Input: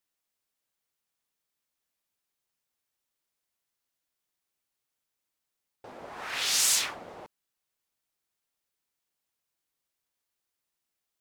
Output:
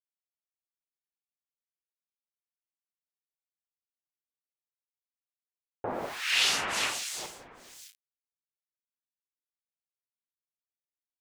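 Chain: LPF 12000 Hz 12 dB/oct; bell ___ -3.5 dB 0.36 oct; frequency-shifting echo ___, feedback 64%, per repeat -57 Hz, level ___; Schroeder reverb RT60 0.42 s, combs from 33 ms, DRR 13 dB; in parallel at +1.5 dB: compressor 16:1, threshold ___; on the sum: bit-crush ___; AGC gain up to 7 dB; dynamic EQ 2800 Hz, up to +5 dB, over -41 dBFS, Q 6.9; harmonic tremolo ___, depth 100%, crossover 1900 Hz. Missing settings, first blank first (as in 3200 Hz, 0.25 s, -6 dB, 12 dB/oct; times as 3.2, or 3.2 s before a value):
60 Hz, 0.217 s, -23 dB, -35 dBFS, 9-bit, 1.2 Hz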